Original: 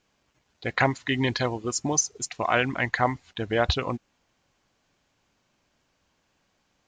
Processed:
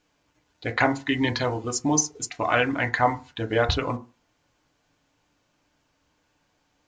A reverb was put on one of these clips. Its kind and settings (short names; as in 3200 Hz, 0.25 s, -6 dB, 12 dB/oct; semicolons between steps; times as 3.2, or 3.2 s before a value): FDN reverb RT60 0.31 s, low-frequency decay 1×, high-frequency decay 0.35×, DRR 4.5 dB